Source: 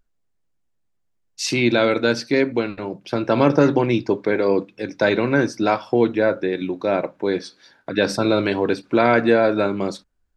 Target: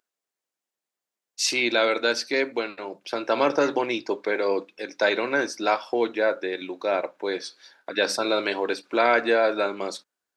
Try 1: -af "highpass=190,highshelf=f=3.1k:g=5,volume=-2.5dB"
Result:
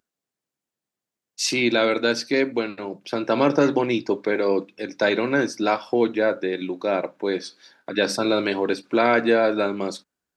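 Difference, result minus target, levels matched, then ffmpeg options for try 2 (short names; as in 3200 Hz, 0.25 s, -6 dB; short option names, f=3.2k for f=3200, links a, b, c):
250 Hz band +5.0 dB
-af "highpass=450,highshelf=f=3.1k:g=5,volume=-2.5dB"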